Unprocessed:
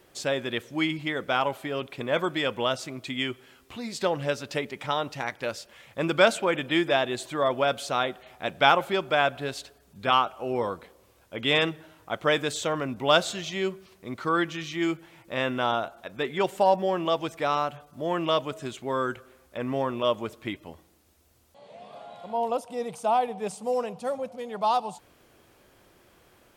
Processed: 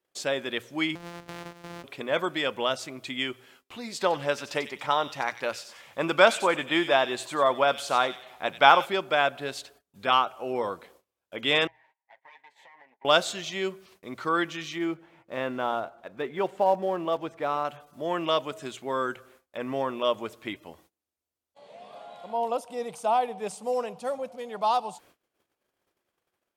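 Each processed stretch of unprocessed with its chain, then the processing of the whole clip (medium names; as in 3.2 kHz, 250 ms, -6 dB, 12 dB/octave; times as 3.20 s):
0.95–1.84 s: sorted samples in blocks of 256 samples + low-pass 3.9 kHz 6 dB/octave + compression 4:1, threshold -36 dBFS
3.99–8.86 s: peaking EQ 1 kHz +5 dB 1.1 oct + feedback echo behind a high-pass 93 ms, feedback 32%, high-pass 2.9 kHz, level -7 dB
11.67–13.05 s: comb filter that takes the minimum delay 7.4 ms + two resonant band-passes 1.3 kHz, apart 1.1 oct + compression 5:1, threshold -50 dBFS
14.78–17.65 s: block-companded coder 5-bit + low-pass 1.2 kHz 6 dB/octave
whole clip: hum notches 60/120 Hz; gate -55 dBFS, range -25 dB; bass shelf 170 Hz -10.5 dB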